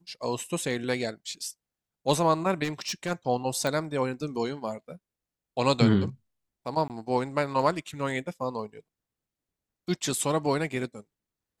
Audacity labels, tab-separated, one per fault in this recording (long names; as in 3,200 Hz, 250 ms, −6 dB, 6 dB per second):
2.630000	3.120000	clipping −26 dBFS
3.670000	3.670000	click
6.880000	6.900000	drop-out 18 ms